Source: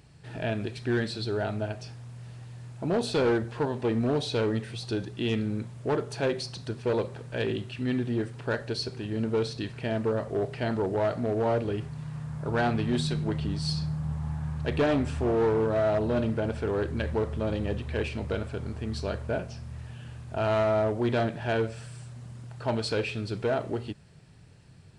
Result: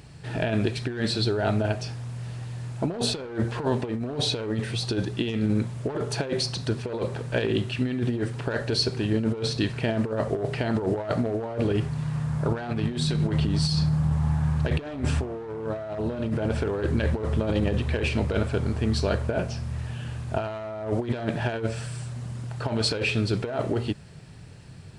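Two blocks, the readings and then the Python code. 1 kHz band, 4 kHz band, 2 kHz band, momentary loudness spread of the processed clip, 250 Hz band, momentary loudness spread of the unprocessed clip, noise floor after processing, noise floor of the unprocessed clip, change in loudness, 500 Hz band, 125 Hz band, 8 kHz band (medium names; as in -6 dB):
-1.0 dB, +6.5 dB, +2.0 dB, 9 LU, +3.0 dB, 12 LU, -42 dBFS, -51 dBFS, +2.0 dB, -1.0 dB, +5.5 dB, +7.5 dB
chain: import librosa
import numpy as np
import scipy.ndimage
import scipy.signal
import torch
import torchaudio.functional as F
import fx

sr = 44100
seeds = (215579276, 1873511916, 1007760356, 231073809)

y = fx.over_compress(x, sr, threshold_db=-30.0, ratio=-0.5)
y = y * 10.0 ** (5.5 / 20.0)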